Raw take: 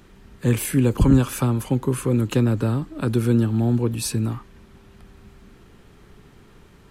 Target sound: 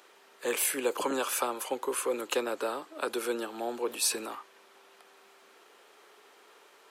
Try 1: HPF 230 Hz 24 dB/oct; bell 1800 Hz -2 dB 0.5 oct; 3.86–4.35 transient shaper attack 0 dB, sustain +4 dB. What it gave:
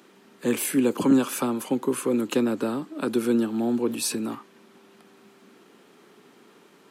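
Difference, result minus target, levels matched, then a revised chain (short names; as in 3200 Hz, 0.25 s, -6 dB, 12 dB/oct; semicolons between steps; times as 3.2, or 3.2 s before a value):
250 Hz band +10.0 dB
HPF 470 Hz 24 dB/oct; bell 1800 Hz -2 dB 0.5 oct; 3.86–4.35 transient shaper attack 0 dB, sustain +4 dB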